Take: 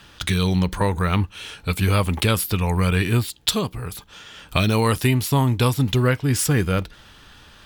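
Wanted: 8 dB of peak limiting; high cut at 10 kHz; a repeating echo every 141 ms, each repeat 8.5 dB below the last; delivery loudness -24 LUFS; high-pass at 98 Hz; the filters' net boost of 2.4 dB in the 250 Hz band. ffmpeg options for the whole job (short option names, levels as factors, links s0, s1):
-af "highpass=98,lowpass=10000,equalizer=f=250:t=o:g=3.5,alimiter=limit=0.299:level=0:latency=1,aecho=1:1:141|282|423|564:0.376|0.143|0.0543|0.0206,volume=0.841"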